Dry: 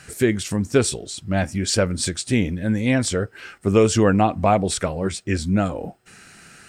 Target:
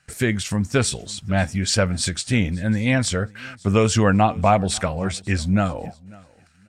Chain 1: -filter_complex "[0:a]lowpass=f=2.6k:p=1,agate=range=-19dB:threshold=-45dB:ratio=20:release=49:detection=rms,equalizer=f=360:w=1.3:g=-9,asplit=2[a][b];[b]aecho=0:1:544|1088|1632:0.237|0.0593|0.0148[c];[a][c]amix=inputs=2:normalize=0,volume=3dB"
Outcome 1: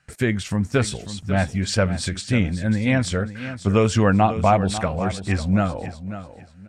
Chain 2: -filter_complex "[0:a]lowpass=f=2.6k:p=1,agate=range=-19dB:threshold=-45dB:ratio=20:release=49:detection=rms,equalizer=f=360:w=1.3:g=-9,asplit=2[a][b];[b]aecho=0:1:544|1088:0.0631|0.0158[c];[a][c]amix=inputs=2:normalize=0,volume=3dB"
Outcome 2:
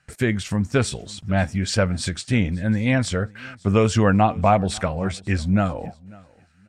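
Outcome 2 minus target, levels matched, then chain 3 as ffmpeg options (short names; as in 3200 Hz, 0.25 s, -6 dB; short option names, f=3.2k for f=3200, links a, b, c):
8000 Hz band -5.5 dB
-filter_complex "[0:a]lowpass=f=6.8k:p=1,agate=range=-19dB:threshold=-45dB:ratio=20:release=49:detection=rms,equalizer=f=360:w=1.3:g=-9,asplit=2[a][b];[b]aecho=0:1:544|1088:0.0631|0.0158[c];[a][c]amix=inputs=2:normalize=0,volume=3dB"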